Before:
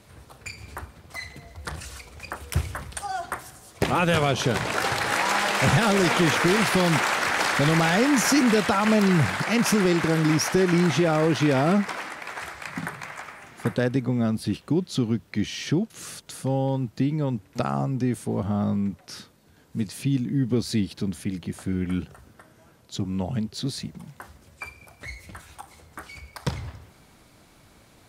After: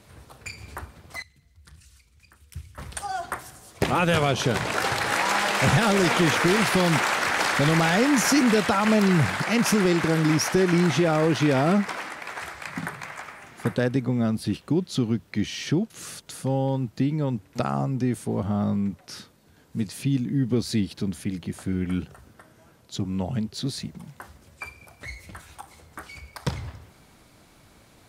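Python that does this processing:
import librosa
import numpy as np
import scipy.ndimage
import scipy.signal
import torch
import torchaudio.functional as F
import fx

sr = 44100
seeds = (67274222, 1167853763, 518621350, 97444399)

y = fx.tone_stack(x, sr, knobs='6-0-2', at=(1.22, 2.78))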